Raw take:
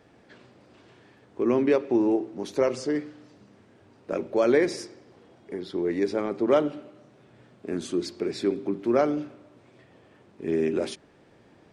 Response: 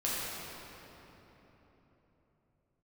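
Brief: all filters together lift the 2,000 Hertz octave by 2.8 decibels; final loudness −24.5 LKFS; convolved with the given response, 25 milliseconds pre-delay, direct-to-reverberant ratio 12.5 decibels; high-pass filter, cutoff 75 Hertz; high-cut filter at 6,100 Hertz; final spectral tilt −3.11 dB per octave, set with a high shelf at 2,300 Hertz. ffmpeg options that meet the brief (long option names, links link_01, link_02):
-filter_complex "[0:a]highpass=75,lowpass=6100,equalizer=frequency=2000:width_type=o:gain=6.5,highshelf=frequency=2300:gain=-6.5,asplit=2[link_01][link_02];[1:a]atrim=start_sample=2205,adelay=25[link_03];[link_02][link_03]afir=irnorm=-1:irlink=0,volume=-20dB[link_04];[link_01][link_04]amix=inputs=2:normalize=0,volume=2dB"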